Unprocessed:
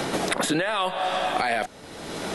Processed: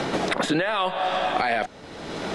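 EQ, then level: Bessel low-pass 11 kHz; distance through air 69 m; +1.5 dB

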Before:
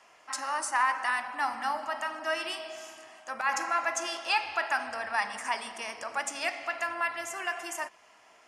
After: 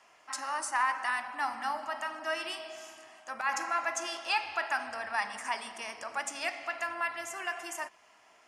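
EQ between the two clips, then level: peaking EQ 500 Hz -2.5 dB 0.32 oct; -2.5 dB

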